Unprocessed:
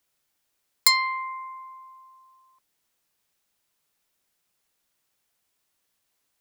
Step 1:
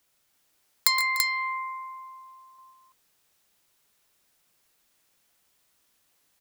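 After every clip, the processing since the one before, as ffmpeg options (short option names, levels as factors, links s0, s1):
-af "acompressor=threshold=0.0501:ratio=3,aecho=1:1:118|141|295|335:0.282|0.224|0.141|0.631,volume=1.68"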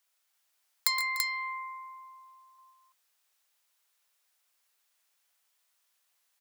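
-af "highpass=730,volume=0.531"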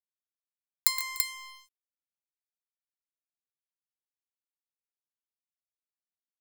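-af "aeval=exprs='sgn(val(0))*max(abs(val(0))-0.0158,0)':c=same,aemphasis=mode=production:type=cd,volume=0.794"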